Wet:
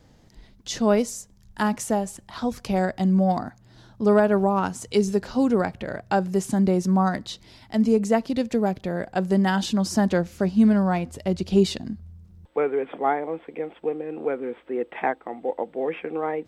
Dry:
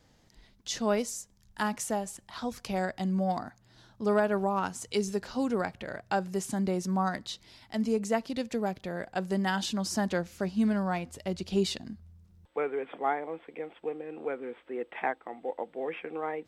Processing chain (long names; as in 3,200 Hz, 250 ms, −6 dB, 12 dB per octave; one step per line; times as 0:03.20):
tilt shelving filter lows +3.5 dB, about 740 Hz
level +6.5 dB